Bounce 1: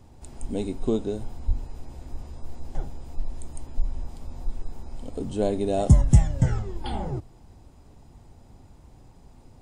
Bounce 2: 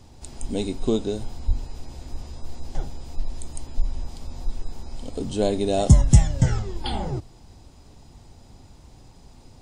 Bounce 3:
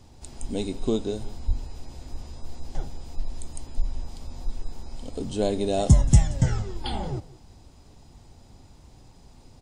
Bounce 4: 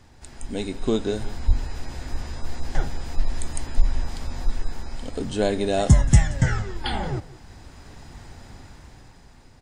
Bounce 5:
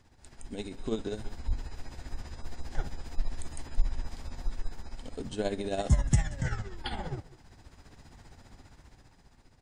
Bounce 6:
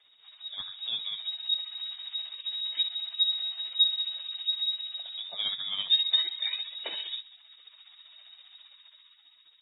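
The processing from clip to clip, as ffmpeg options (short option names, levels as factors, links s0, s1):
-af "equalizer=f=4800:t=o:w=1.7:g=9,volume=1.26"
-af "aecho=1:1:177:0.106,volume=0.75"
-af "dynaudnorm=f=250:g=9:m=2.99,equalizer=f=1700:w=1.5:g=12,volume=0.841"
-af "tremolo=f=15:d=0.59,volume=0.447"
-af "aexciter=amount=1:drive=3.9:freq=2800,lowpass=f=3200:t=q:w=0.5098,lowpass=f=3200:t=q:w=0.6013,lowpass=f=3200:t=q:w=0.9,lowpass=f=3200:t=q:w=2.563,afreqshift=-3800,volume=0.891" -ar 22050 -c:a libmp3lame -b:a 16k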